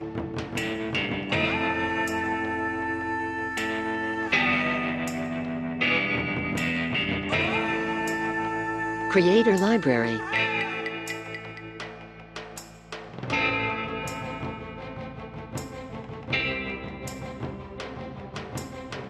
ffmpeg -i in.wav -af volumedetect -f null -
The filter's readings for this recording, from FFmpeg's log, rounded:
mean_volume: -28.0 dB
max_volume: -8.7 dB